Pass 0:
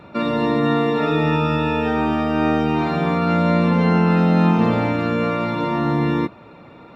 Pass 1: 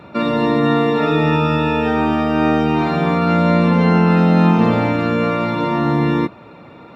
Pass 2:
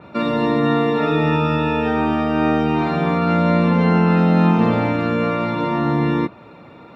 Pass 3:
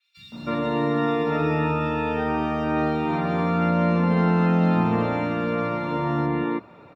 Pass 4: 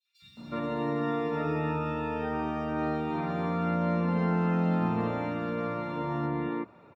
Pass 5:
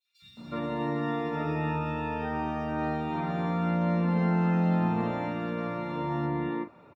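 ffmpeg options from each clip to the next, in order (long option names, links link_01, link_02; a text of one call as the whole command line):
ffmpeg -i in.wav -af "highpass=61,volume=3dB" out.wav
ffmpeg -i in.wav -af "adynamicequalizer=threshold=0.0141:dfrequency=4200:dqfactor=0.7:tfrequency=4200:tqfactor=0.7:attack=5:release=100:ratio=0.375:range=2:mode=cutabove:tftype=highshelf,volume=-2dB" out.wav
ffmpeg -i in.wav -filter_complex "[0:a]acrossover=split=190|3500[link_01][link_02][link_03];[link_01]adelay=170[link_04];[link_02]adelay=320[link_05];[link_04][link_05][link_03]amix=inputs=3:normalize=0,volume=-4.5dB" out.wav
ffmpeg -i in.wav -filter_complex "[0:a]acrossover=split=3400[link_01][link_02];[link_01]adelay=50[link_03];[link_03][link_02]amix=inputs=2:normalize=0,volume=-7dB" out.wav
ffmpeg -i in.wav -filter_complex "[0:a]asplit=2[link_01][link_02];[link_02]adelay=40,volume=-10dB[link_03];[link_01][link_03]amix=inputs=2:normalize=0" out.wav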